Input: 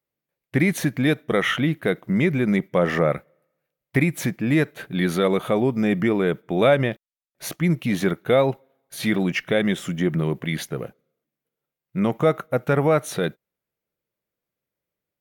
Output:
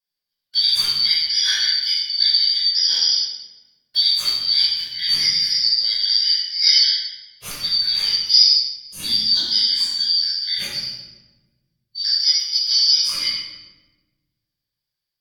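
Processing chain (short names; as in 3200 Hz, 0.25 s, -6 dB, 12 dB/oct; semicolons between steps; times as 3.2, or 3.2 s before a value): four-band scrambler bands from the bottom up 4321; 8.2–10.2 ten-band EQ 125 Hz -3 dB, 250 Hz +10 dB, 500 Hz -8 dB, 2000 Hz -12 dB, 4000 Hz +3 dB, 8000 Hz +4 dB; reverb RT60 1.2 s, pre-delay 10 ms, DRR -8 dB; gain -7 dB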